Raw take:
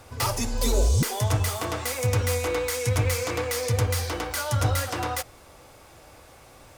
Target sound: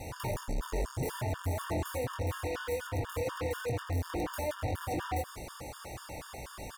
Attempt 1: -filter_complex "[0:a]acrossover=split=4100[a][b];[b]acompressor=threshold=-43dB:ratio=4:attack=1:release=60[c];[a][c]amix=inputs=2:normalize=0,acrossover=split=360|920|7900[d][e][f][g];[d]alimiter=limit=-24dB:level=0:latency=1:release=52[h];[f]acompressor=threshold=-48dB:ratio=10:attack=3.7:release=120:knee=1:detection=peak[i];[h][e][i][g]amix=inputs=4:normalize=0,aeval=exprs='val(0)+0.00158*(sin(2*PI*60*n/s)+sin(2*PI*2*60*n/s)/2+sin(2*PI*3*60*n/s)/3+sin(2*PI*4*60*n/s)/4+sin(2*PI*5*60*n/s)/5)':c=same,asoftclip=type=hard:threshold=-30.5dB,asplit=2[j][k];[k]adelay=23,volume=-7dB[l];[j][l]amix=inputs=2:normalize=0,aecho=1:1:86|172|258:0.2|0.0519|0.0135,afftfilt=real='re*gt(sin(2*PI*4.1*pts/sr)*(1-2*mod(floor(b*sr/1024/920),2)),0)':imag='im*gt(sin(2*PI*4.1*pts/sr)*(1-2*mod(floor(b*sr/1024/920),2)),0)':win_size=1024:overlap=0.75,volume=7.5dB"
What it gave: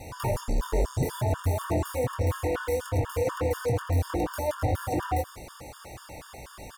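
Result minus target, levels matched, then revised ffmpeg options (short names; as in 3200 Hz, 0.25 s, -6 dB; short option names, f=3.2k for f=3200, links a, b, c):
hard clip: distortion -4 dB
-filter_complex "[0:a]acrossover=split=4100[a][b];[b]acompressor=threshold=-43dB:ratio=4:attack=1:release=60[c];[a][c]amix=inputs=2:normalize=0,acrossover=split=360|920|7900[d][e][f][g];[d]alimiter=limit=-24dB:level=0:latency=1:release=52[h];[f]acompressor=threshold=-48dB:ratio=10:attack=3.7:release=120:knee=1:detection=peak[i];[h][e][i][g]amix=inputs=4:normalize=0,aeval=exprs='val(0)+0.00158*(sin(2*PI*60*n/s)+sin(2*PI*2*60*n/s)/2+sin(2*PI*3*60*n/s)/3+sin(2*PI*4*60*n/s)/4+sin(2*PI*5*60*n/s)/5)':c=same,asoftclip=type=hard:threshold=-39dB,asplit=2[j][k];[k]adelay=23,volume=-7dB[l];[j][l]amix=inputs=2:normalize=0,aecho=1:1:86|172|258:0.2|0.0519|0.0135,afftfilt=real='re*gt(sin(2*PI*4.1*pts/sr)*(1-2*mod(floor(b*sr/1024/920),2)),0)':imag='im*gt(sin(2*PI*4.1*pts/sr)*(1-2*mod(floor(b*sr/1024/920),2)),0)':win_size=1024:overlap=0.75,volume=7.5dB"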